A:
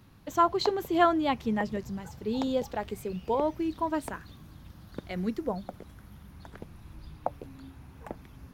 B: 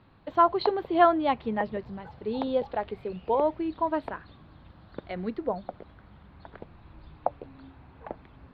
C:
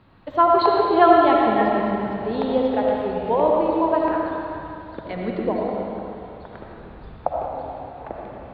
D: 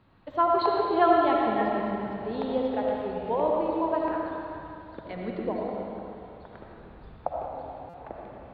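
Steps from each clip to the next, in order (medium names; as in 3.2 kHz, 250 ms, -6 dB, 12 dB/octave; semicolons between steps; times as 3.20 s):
FFT filter 200 Hz 0 dB, 650 Hz +8 dB, 4.3 kHz 0 dB, 6.3 kHz -30 dB; trim -3.5 dB
reverberation RT60 2.8 s, pre-delay 35 ms, DRR -3 dB; trim +3.5 dB
buffer glitch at 7.89 s, samples 256, times 7; trim -7 dB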